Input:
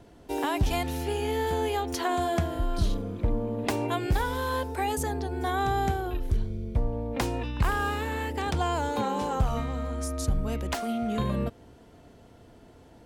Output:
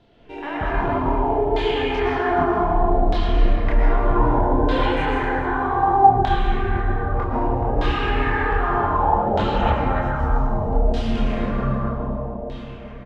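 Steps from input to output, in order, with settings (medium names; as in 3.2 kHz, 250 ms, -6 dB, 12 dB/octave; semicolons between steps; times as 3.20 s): 10.32–11.00 s: FFT filter 580 Hz 0 dB, 1.1 kHz -11 dB, 11 kHz +6 dB; feedback delay 427 ms, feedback 53%, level -5 dB; algorithmic reverb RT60 4 s, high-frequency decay 0.8×, pre-delay 80 ms, DRR -8 dB; LFO low-pass saw down 0.64 Hz 660–3700 Hz; chorus voices 6, 0.86 Hz, delay 27 ms, depth 4.8 ms; trim -1 dB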